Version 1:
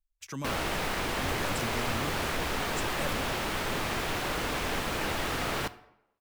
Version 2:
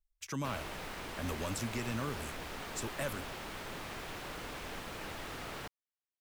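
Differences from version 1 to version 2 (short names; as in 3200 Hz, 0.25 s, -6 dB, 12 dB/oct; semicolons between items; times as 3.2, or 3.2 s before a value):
background -11.0 dB; reverb: off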